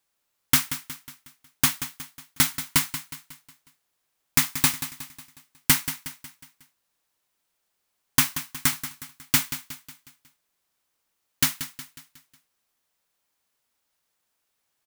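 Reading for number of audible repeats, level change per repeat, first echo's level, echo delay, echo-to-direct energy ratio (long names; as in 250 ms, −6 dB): 4, −6.5 dB, −12.0 dB, 182 ms, −11.0 dB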